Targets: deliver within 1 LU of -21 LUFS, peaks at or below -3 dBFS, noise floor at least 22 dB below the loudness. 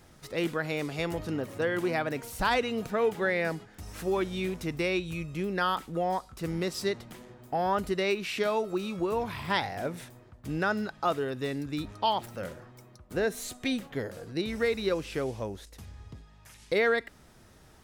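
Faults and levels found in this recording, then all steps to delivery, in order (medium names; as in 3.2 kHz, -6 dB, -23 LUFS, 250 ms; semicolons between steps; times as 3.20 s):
loudness -31.0 LUFS; peak level -16.0 dBFS; loudness target -21.0 LUFS
-> trim +10 dB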